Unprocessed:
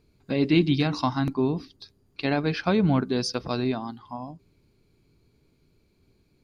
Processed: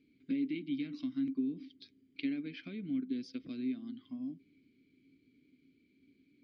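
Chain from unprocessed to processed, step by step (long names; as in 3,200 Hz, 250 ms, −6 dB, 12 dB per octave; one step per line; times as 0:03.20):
downward compressor 6 to 1, threshold −36 dBFS, peak gain reduction 19 dB
formant filter i
level +8.5 dB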